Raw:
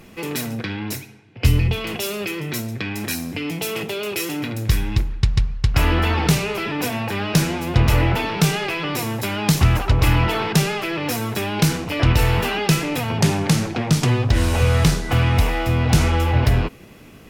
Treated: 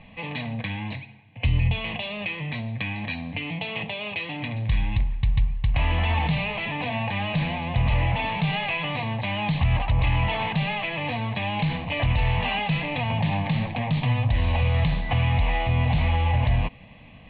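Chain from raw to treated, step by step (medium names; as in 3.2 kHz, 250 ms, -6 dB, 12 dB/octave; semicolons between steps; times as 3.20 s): peak limiter -12.5 dBFS, peak gain reduction 7 dB; steep low-pass 4.4 kHz 72 dB/octave; static phaser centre 1.4 kHz, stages 6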